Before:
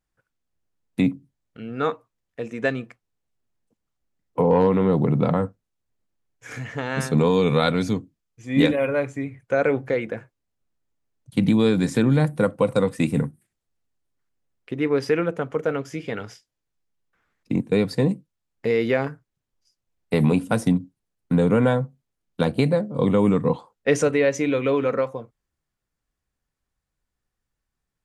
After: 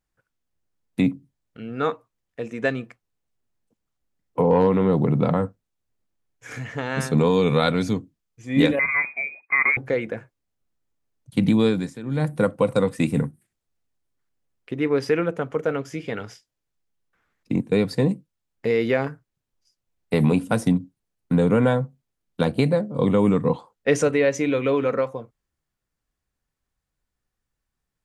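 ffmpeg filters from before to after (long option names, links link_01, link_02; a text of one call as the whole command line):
ffmpeg -i in.wav -filter_complex "[0:a]asettb=1/sr,asplit=3[link_01][link_02][link_03];[link_01]atrim=end=8.794[link_04];[link_02]atrim=start=8.79:end=9.77,asetpts=PTS-STARTPTS,afade=type=in:duration=0.004:curve=qsin,afade=type=out:start_time=0.976:duration=0.004:curve=qsin,lowpass=frequency=2200:width_type=q:width=0.5098,lowpass=frequency=2200:width_type=q:width=0.6013,lowpass=frequency=2200:width_type=q:width=0.9,lowpass=frequency=2200:width_type=q:width=2.563,afreqshift=-2600[link_05];[link_03]atrim=start=9.766[link_06];[link_04][link_05]acrossfade=duration=0.004:curve1=hsin:curve2=qsin[link_07];[link_07][link_06]acrossfade=duration=0.004:curve1=qsin:curve2=hsin,asplit=3[link_08][link_09][link_10];[link_08]atrim=end=11.95,asetpts=PTS-STARTPTS,afade=type=out:start_time=11.65:duration=0.3:silence=0.149624[link_11];[link_09]atrim=start=11.95:end=12.03,asetpts=PTS-STARTPTS,volume=-16.5dB[link_12];[link_10]atrim=start=12.03,asetpts=PTS-STARTPTS,afade=type=in:duration=0.3:silence=0.149624[link_13];[link_11][link_12][link_13]concat=n=3:v=0:a=1" out.wav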